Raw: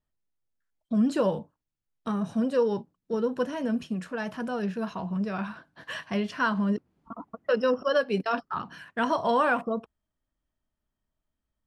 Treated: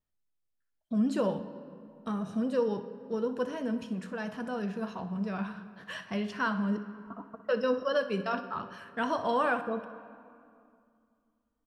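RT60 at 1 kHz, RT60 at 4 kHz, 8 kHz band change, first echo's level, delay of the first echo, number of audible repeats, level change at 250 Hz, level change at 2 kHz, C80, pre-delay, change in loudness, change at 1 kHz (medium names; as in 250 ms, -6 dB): 2.4 s, 1.5 s, no reading, -15.5 dB, 62 ms, 1, -3.5 dB, -4.0 dB, 13.5 dB, 4 ms, -4.0 dB, -4.0 dB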